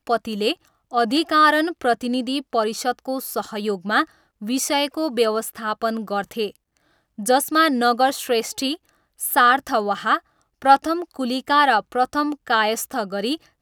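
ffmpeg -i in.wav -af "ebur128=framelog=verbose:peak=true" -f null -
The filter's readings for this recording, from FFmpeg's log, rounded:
Integrated loudness:
  I:         -20.9 LUFS
  Threshold: -31.2 LUFS
Loudness range:
  LRA:         4.0 LU
  Threshold: -41.3 LUFS
  LRA low:   -23.5 LUFS
  LRA high:  -19.5 LUFS
True peak:
  Peak:       -1.5 dBFS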